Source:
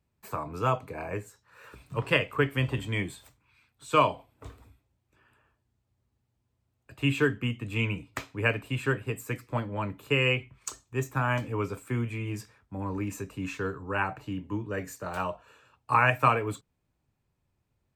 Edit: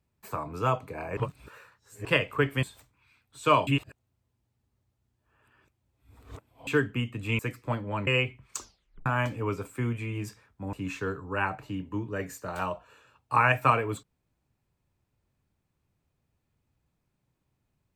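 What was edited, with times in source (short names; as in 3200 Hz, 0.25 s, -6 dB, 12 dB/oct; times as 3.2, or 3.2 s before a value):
1.17–2.05 reverse
2.63–3.1 cut
4.14–7.14 reverse
7.86–9.24 cut
9.92–10.19 cut
10.69 tape stop 0.49 s
12.85–13.31 cut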